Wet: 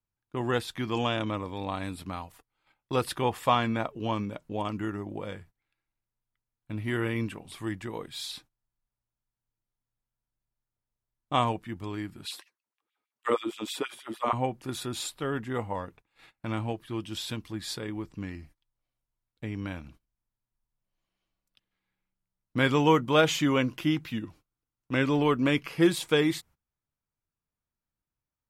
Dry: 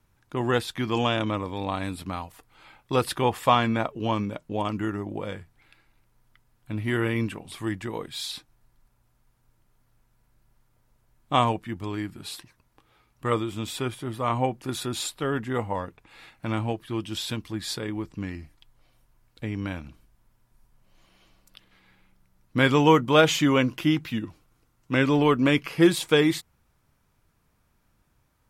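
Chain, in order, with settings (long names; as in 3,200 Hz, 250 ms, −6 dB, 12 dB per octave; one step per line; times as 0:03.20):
noise gate −48 dBFS, range −20 dB
0:12.25–0:14.33: auto-filter high-pass sine 6.3 Hz 250–3,200 Hz
level −4 dB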